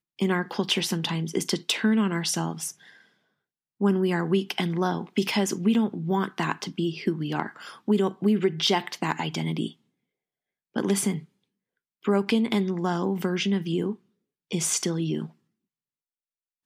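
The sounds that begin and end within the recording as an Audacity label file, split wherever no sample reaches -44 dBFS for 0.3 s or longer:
3.800000	9.720000	sound
10.760000	11.240000	sound
12.040000	13.950000	sound
14.510000	15.300000	sound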